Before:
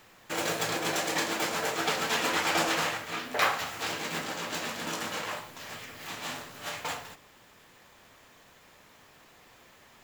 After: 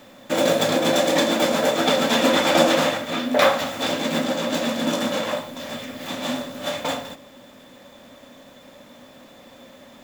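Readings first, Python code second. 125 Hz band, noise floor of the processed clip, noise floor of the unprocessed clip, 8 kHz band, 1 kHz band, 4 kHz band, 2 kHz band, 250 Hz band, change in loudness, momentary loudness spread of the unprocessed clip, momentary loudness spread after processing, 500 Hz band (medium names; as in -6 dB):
+10.0 dB, -48 dBFS, -58 dBFS, +4.5 dB, +7.5 dB, +9.0 dB, +5.0 dB, +15.5 dB, +9.5 dB, 13 LU, 12 LU, +15.0 dB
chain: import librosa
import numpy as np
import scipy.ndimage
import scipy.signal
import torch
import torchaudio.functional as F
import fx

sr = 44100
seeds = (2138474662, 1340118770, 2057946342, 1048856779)

y = fx.small_body(x, sr, hz=(250.0, 550.0, 3500.0), ring_ms=45, db=17)
y = y * 10.0 ** (4.5 / 20.0)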